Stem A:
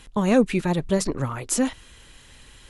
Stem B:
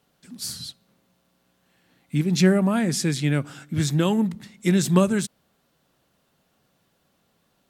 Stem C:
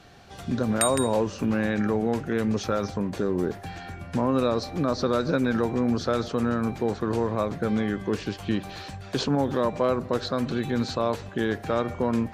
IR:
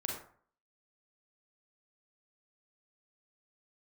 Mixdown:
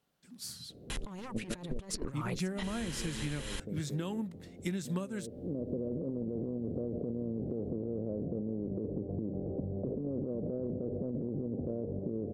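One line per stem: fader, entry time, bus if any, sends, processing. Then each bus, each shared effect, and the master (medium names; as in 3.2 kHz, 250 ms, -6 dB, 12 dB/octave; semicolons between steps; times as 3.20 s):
-4.5 dB, 0.90 s, bus A, no send, sine folder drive 10 dB, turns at -6.5 dBFS
-3.0 dB, 0.00 s, no bus, no send, upward expansion 1.5:1, over -30 dBFS
-0.5 dB, 0.70 s, bus A, no send, spectral levelling over time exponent 0.6; steep low-pass 530 Hz 36 dB/octave; auto duck -20 dB, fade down 0.75 s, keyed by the second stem
bus A: 0.0 dB, compressor with a negative ratio -25 dBFS, ratio -0.5; peak limiter -17.5 dBFS, peak gain reduction 9 dB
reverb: none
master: compression 6:1, threshold -33 dBFS, peak gain reduction 16.5 dB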